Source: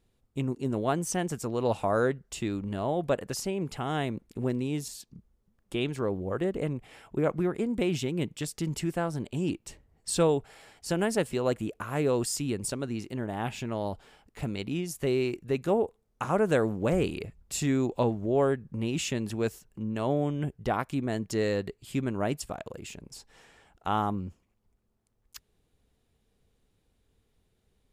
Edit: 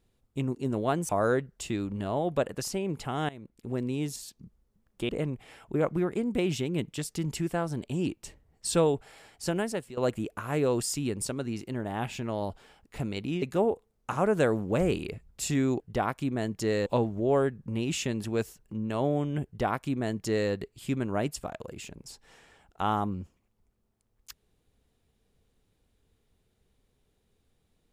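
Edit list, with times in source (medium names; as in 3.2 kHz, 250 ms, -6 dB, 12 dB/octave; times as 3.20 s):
1.09–1.81 s: delete
4.01–4.67 s: fade in, from -18.5 dB
5.81–6.52 s: delete
10.89–11.40 s: fade out, to -16 dB
14.85–15.54 s: delete
20.51–21.57 s: copy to 17.92 s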